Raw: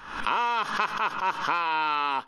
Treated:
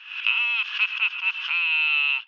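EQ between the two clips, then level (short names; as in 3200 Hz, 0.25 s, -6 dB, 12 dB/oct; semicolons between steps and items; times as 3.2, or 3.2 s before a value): resonant high-pass 2700 Hz, resonance Q 11; air absorption 230 m; high shelf 7200 Hz +4.5 dB; 0.0 dB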